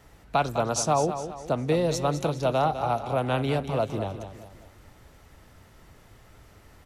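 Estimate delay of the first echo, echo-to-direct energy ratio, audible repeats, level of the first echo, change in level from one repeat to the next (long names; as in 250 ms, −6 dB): 204 ms, −9.0 dB, 4, −10.0 dB, −7.5 dB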